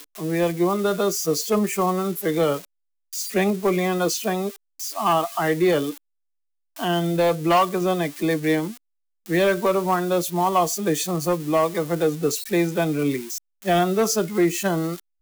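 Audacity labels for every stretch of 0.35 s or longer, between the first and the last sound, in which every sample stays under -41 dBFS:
2.650000	3.130000	silence
5.980000	6.760000	silence
8.770000	9.260000	silence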